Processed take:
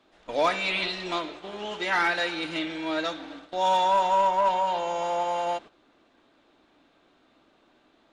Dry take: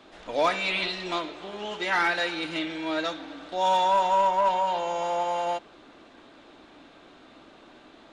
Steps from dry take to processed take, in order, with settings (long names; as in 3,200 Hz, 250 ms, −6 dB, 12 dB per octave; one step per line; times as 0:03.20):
noise gate −41 dBFS, range −11 dB